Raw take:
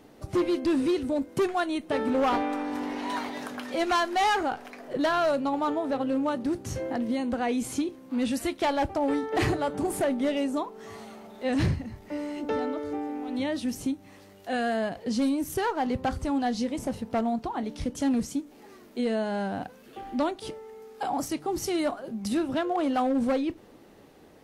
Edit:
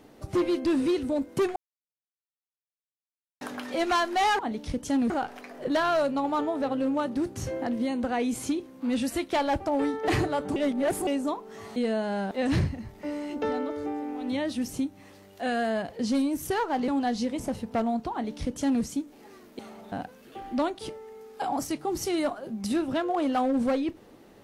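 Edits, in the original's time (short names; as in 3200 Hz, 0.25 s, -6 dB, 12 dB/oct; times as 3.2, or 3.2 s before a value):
1.56–3.41 mute
9.85–10.36 reverse
11.05–11.38 swap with 18.98–19.53
15.95–16.27 cut
17.51–18.22 copy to 4.39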